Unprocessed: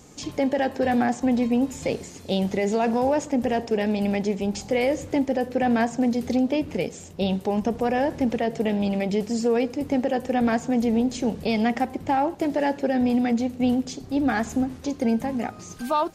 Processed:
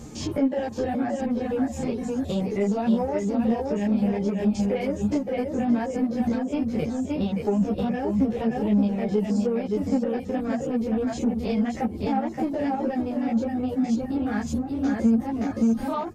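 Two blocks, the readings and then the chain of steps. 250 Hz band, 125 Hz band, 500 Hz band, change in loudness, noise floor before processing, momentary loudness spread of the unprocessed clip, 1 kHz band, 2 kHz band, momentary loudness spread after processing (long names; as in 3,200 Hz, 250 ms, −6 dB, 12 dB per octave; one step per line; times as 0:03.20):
0.0 dB, +2.0 dB, −3.0 dB, −1.0 dB, −42 dBFS, 6 LU, −5.0 dB, −7.5 dB, 4 LU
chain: spectrum averaged block by block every 50 ms
on a send: repeating echo 572 ms, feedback 27%, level −4.5 dB
on the sum: downward compressor 3 to 1, threshold −33 dBFS, peak gain reduction 12.5 dB
reverb reduction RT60 0.58 s
low-shelf EQ 500 Hz +9.5 dB
in parallel at −4 dB: soft clipping −27 dBFS, distortion −12 dB
on the sum: string-ensemble chorus
level +3 dB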